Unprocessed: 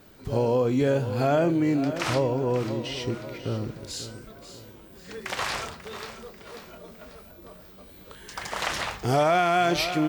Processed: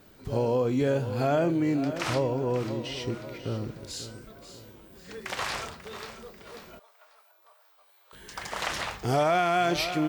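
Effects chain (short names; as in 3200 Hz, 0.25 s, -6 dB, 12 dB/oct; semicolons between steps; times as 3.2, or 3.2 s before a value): 6.79–8.13 ladder high-pass 710 Hz, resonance 40%; gain -2.5 dB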